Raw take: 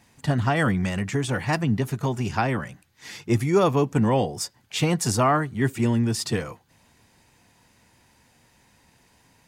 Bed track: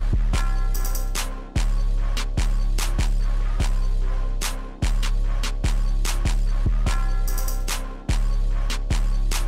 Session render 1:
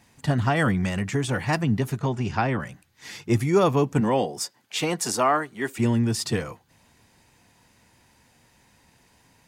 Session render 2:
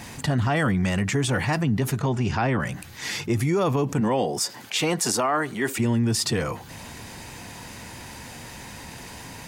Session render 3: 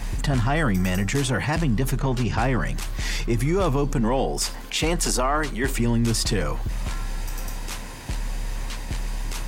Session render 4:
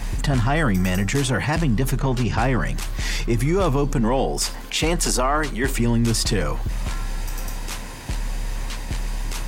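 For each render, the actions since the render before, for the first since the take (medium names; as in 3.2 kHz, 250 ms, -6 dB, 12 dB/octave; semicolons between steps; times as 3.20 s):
1.99–2.60 s: distance through air 74 m; 4.00–5.78 s: high-pass 180 Hz -> 400 Hz
peak limiter -15.5 dBFS, peak gain reduction 6.5 dB; level flattener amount 50%
add bed track -7 dB
trim +2 dB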